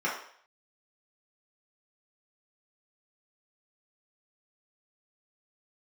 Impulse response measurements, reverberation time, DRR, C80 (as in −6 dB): 0.60 s, −6.5 dB, 8.5 dB